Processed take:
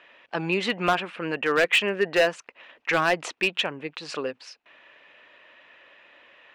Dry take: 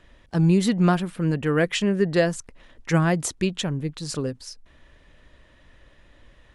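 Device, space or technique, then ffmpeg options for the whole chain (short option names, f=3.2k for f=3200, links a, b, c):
megaphone: -af "highpass=590,lowpass=2.9k,equalizer=f=2.6k:t=o:w=0.4:g=9,asoftclip=type=hard:threshold=-20dB,volume=6dB"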